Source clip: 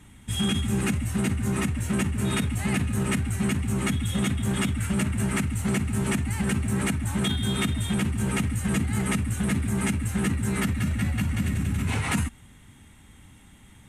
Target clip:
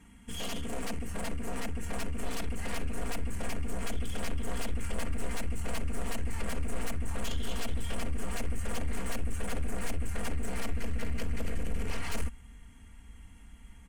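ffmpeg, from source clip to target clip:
-af "aeval=exprs='0.2*(cos(1*acos(clip(val(0)/0.2,-1,1)))-cos(1*PI/2))+0.1*(cos(3*acos(clip(val(0)/0.2,-1,1)))-cos(3*PI/2))+0.0178*(cos(4*acos(clip(val(0)/0.2,-1,1)))-cos(4*PI/2))':c=same,highshelf=f=6.7k:g=-4.5,bandreject=f=3.7k:w=5.3,aecho=1:1:4.3:0.67,asoftclip=type=tanh:threshold=-30dB,asubboost=boost=3.5:cutoff=84"

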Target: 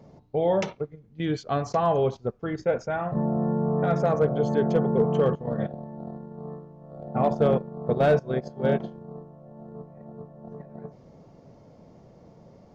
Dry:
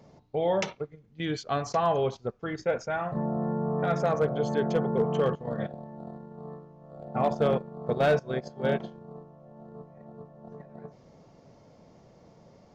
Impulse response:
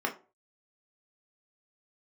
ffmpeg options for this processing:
-af "tiltshelf=f=970:g=4,volume=1dB"

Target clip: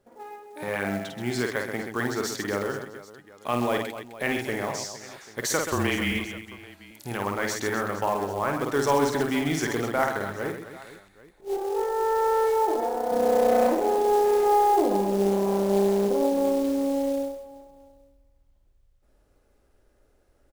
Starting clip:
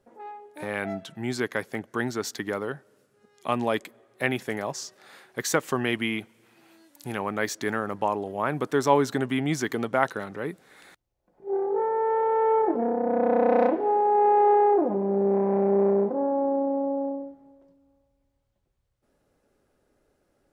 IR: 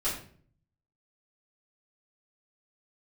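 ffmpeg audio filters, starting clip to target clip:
-filter_complex "[0:a]asettb=1/sr,asplit=3[a][b][c];[a]atrim=end=5.724[d];[b]atrim=start=5.72:end=6.12,asetpts=PTS-STARTPTS,afade=t=in:d=0.004:c=qsin,afade=t=out:st=0.396:d=0.004:c=qsin,afreqshift=-26[e];[c]atrim=start=6.116[f];[d][e]acrossfade=d=0.004:c1=hsin:c2=qsin[g];[g][f]acrossfade=d=0.004:c1=qsin:c2=hsin,asettb=1/sr,asplit=3[h][i][j];[h]atrim=end=11.574[k];[i]atrim=start=11.57:end=13.12,asetpts=PTS-STARTPTS,afade=t=in:d=0.004:c=qsin,afade=t=out:st=1.546:d=0.004:c=qsin,equalizer=f=125:t=o:w=1:g=-10,equalizer=f=250:t=o:w=1:g=-8,equalizer=f=4k:t=o:w=1:g=-4[l];[j]atrim=start=13.116[m];[k][l]acrossfade=d=0.004:c1=hsin:c2=qsin[n];[n][m]acrossfade=d=0.004:c1=qsin:c2=hsin,asplit=2[o][p];[p]alimiter=limit=-17dB:level=0:latency=1:release=19,volume=-0.5dB[q];[o][q]amix=inputs=2:normalize=0,aecho=1:1:50|130|258|462.8|790.5:0.631|0.398|0.251|0.158|0.1,acrusher=bits=5:mode=log:mix=0:aa=0.000001,asubboost=boost=5:cutoff=67,volume=-5.5dB"

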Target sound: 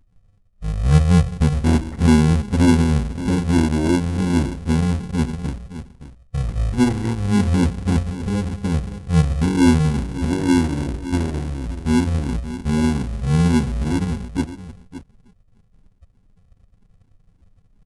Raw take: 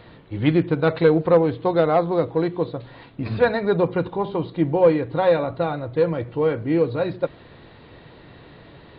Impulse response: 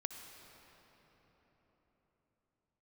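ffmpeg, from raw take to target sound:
-filter_complex "[0:a]asplit=2[a][b];[b]asplit=4[c][d][e][f];[c]adelay=151,afreqshift=-52,volume=-20.5dB[g];[d]adelay=302,afreqshift=-104,volume=-25.5dB[h];[e]adelay=453,afreqshift=-156,volume=-30.6dB[i];[f]adelay=604,afreqshift=-208,volume=-35.6dB[j];[g][h][i][j]amix=inputs=4:normalize=0[k];[a][k]amix=inputs=2:normalize=0,anlmdn=6.31,equalizer=f=2.1k:w=0.36:g=-13.5,asplit=2[l][m];[m]adelay=285.7,volume=-13dB,highshelf=f=4k:g=-6.43[n];[l][n]amix=inputs=2:normalize=0,asplit=2[o][p];[p]acrusher=samples=36:mix=1:aa=0.000001,volume=-3dB[q];[o][q]amix=inputs=2:normalize=0,adynamicequalizer=threshold=0.00631:dfrequency=1100:dqfactor=5.3:tfrequency=1100:tqfactor=5.3:attack=5:release=100:ratio=0.375:range=1.5:mode=boostabove:tftype=bell,asetrate=22182,aresample=44100,volume=2dB"

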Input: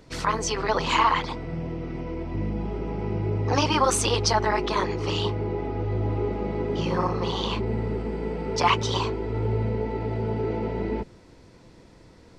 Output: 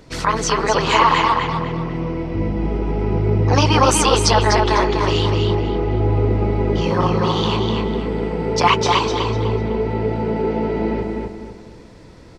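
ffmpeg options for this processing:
-filter_complex "[0:a]asplit=2[a][b];[b]adelay=249,lowpass=f=5k:p=1,volume=-3dB,asplit=2[c][d];[d]adelay=249,lowpass=f=5k:p=1,volume=0.38,asplit=2[e][f];[f]adelay=249,lowpass=f=5k:p=1,volume=0.38,asplit=2[g][h];[h]adelay=249,lowpass=f=5k:p=1,volume=0.38,asplit=2[i][j];[j]adelay=249,lowpass=f=5k:p=1,volume=0.38[k];[a][c][e][g][i][k]amix=inputs=6:normalize=0,volume=6dB"

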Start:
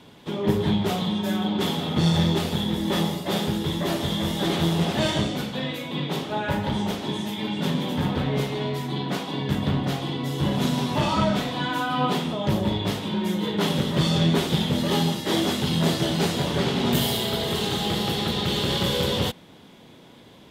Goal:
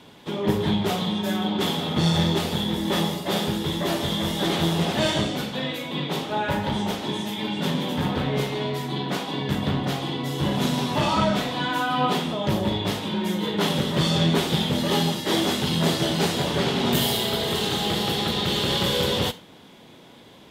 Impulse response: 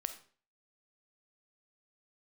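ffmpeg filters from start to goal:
-filter_complex "[0:a]asplit=2[a][b];[1:a]atrim=start_sample=2205,asetrate=57330,aresample=44100,lowshelf=f=180:g=-10.5[c];[b][c]afir=irnorm=-1:irlink=0,volume=4dB[d];[a][d]amix=inputs=2:normalize=0,volume=-4.5dB"

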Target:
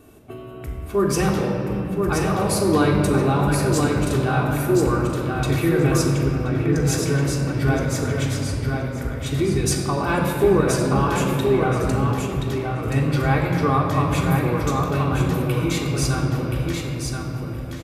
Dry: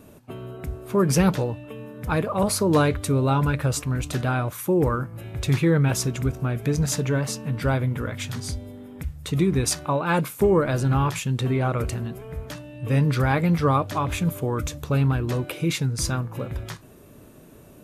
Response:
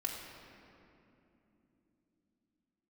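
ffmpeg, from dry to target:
-filter_complex "[0:a]aecho=1:1:1026|2052|3078:0.596|0.0953|0.0152,asettb=1/sr,asplit=3[a][b][c];[a]atrim=end=6.234[d];[b]atrim=start=6.23:end=6.76,asetpts=PTS-STARTPTS,afade=t=in:d=0.004:c=qsin,afade=t=out:st=0.526:d=0.004:c=qsin,acrossover=split=2600[e][f];[f]acompressor=threshold=-52dB:ratio=4:attack=1:release=60[g];[e][g]amix=inputs=2:normalize=0[h];[c]atrim=start=6.756[i];[d][h]acrossfade=d=0.004:c1=hsin:c2=qsin[j];[j][i]acrossfade=d=0.004:c1=qsin:c2=hsin[k];[1:a]atrim=start_sample=2205[l];[k][l]afir=irnorm=-1:irlink=0"

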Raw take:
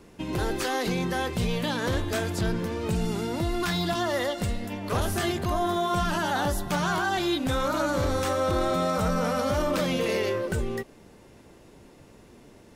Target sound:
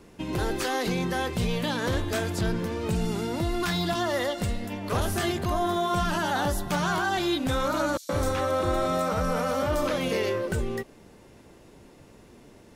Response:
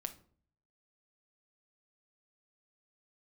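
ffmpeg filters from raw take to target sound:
-filter_complex "[0:a]asettb=1/sr,asplit=3[a][b][c];[a]atrim=end=7.974[d];[b]atrim=start=7.97:end=10.13,asetpts=PTS-STARTPTS,afade=t=in:d=0.004:c=qsin,afade=t=out:st=2.156:d=0.004:c=qsin,acrossover=split=190|4700[e][f][g];[f]adelay=120[h];[e]adelay=150[i];[i][h][g]amix=inputs=3:normalize=0,atrim=end_sample=95256[j];[c]atrim=start=10.126[k];[d][j]acrossfade=d=0.004:c1=hsin:c2=qsin[l];[l][k]acrossfade=d=0.004:c1=qsin:c2=hsin"

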